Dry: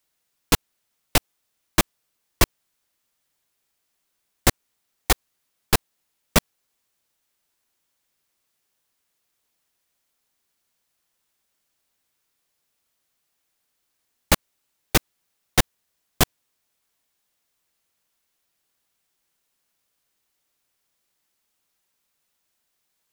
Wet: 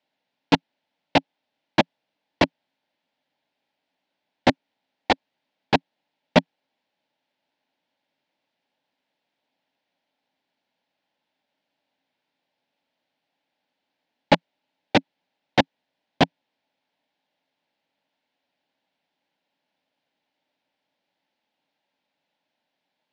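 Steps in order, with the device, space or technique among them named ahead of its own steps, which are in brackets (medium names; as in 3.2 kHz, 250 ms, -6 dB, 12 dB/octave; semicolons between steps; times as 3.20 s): kitchen radio (cabinet simulation 160–4000 Hz, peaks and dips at 170 Hz +4 dB, 270 Hz +9 dB, 390 Hz -4 dB, 590 Hz +7 dB, 850 Hz +8 dB, 1.2 kHz -10 dB); trim +1 dB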